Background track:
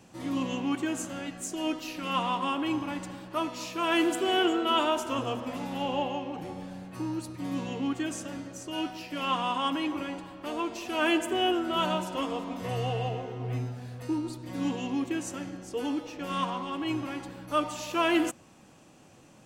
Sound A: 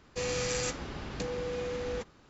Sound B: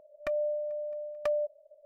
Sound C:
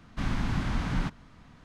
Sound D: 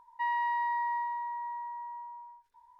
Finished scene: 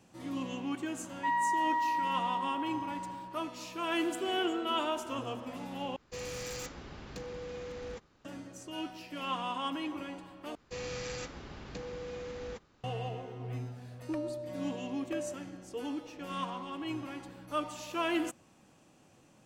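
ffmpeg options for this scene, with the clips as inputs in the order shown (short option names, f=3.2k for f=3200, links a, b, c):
-filter_complex "[1:a]asplit=2[a][b];[0:a]volume=-6.5dB[c];[4:a]equalizer=f=1.3k:w=1.5:g=9[d];[a]aeval=exprs='0.0447*(abs(mod(val(0)/0.0447+3,4)-2)-1)':c=same[e];[b]acrossover=split=6200[f][g];[g]acompressor=threshold=-55dB:ratio=4:attack=1:release=60[h];[f][h]amix=inputs=2:normalize=0[i];[2:a]asoftclip=type=tanh:threshold=-20dB[j];[c]asplit=3[k][l][m];[k]atrim=end=5.964[n];[e]atrim=end=2.29,asetpts=PTS-STARTPTS,volume=-7dB[o];[l]atrim=start=8.246:end=10.554[p];[i]atrim=end=2.29,asetpts=PTS-STARTPTS,volume=-6.5dB[q];[m]atrim=start=12.836[r];[d]atrim=end=2.79,asetpts=PTS-STARTPTS,volume=-4dB,afade=t=in:d=0.004:c=hsin,afade=t=out:st=2.786:d=0.004:c=hsin,adelay=1040[s];[j]atrim=end=1.85,asetpts=PTS-STARTPTS,volume=-9dB,afade=t=in:d=0.004:c=hsin,afade=t=out:st=1.846:d=0.004:c=hsin,adelay=13870[t];[n][o]acrossfade=d=0.004:c1=hsin:c2=hsin[u];[u][p]acrossfade=d=0.004:c1=hsin:c2=hsin[v];[v][q]acrossfade=d=0.004:c1=hsin:c2=hsin[w];[w][r]acrossfade=d=0.004:c1=hsin:c2=hsin[x];[x][s][t]amix=inputs=3:normalize=0"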